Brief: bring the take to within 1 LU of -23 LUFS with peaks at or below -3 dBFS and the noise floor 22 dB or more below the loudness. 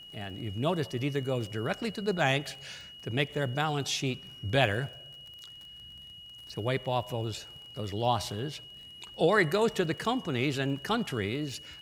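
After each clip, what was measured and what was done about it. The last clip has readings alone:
ticks 29/s; steady tone 2900 Hz; tone level -46 dBFS; loudness -31.0 LUFS; peak -8.0 dBFS; loudness target -23.0 LUFS
-> de-click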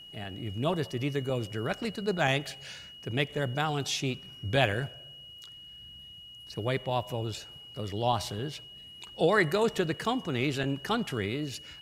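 ticks 0.17/s; steady tone 2900 Hz; tone level -46 dBFS
-> notch 2900 Hz, Q 30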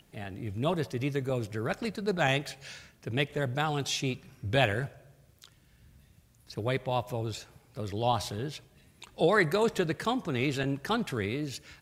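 steady tone none; loudness -31.0 LUFS; peak -8.5 dBFS; loudness target -23.0 LUFS
-> gain +8 dB; limiter -3 dBFS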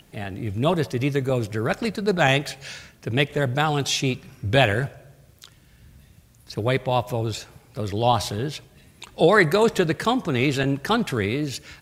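loudness -23.0 LUFS; peak -3.0 dBFS; noise floor -55 dBFS

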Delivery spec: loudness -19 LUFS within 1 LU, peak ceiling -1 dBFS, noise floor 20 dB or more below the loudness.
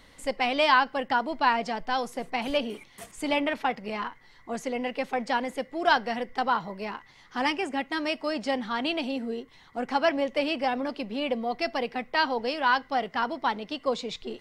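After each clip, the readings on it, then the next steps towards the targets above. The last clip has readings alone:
loudness -28.0 LUFS; peak -8.0 dBFS; loudness target -19.0 LUFS
-> gain +9 dB; limiter -1 dBFS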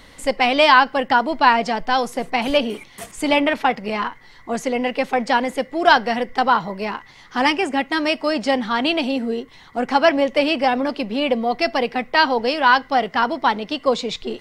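loudness -19.5 LUFS; peak -1.0 dBFS; noise floor -46 dBFS

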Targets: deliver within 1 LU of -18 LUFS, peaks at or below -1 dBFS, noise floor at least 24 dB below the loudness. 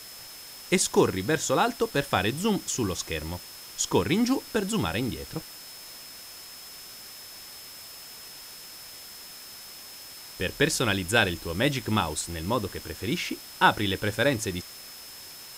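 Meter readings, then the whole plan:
steady tone 5200 Hz; tone level -46 dBFS; noise floor -44 dBFS; noise floor target -51 dBFS; loudness -26.5 LUFS; peak -5.0 dBFS; loudness target -18.0 LUFS
-> notch 5200 Hz, Q 30; denoiser 7 dB, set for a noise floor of -44 dBFS; gain +8.5 dB; limiter -1 dBFS

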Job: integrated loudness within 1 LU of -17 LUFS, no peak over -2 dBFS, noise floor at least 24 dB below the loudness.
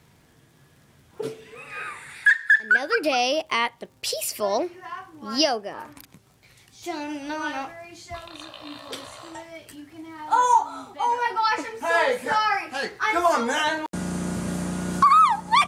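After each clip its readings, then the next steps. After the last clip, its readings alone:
ticks 47/s; loudness -23.0 LUFS; peak -9.0 dBFS; loudness target -17.0 LUFS
-> de-click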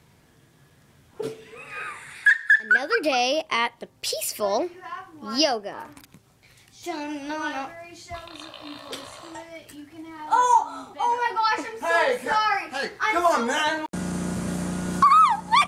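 ticks 0.19/s; loudness -23.0 LUFS; peak -9.0 dBFS; loudness target -17.0 LUFS
-> gain +6 dB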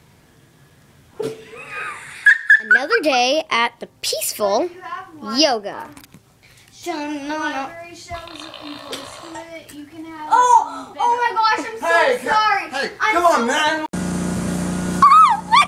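loudness -17.0 LUFS; peak -3.0 dBFS; noise floor -52 dBFS

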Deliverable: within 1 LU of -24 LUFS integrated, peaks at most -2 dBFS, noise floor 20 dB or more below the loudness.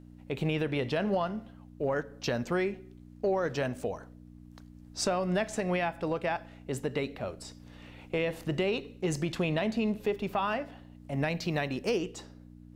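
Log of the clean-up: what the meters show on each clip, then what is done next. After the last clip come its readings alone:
hum 60 Hz; harmonics up to 300 Hz; hum level -50 dBFS; loudness -32.0 LUFS; peak -18.0 dBFS; loudness target -24.0 LUFS
-> de-hum 60 Hz, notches 5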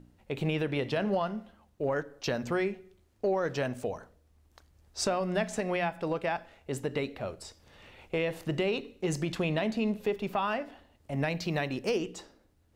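hum none; loudness -32.0 LUFS; peak -17.5 dBFS; loudness target -24.0 LUFS
-> gain +8 dB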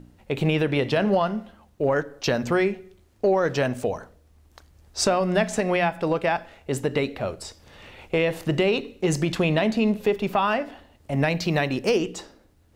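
loudness -24.0 LUFS; peak -9.5 dBFS; noise floor -58 dBFS

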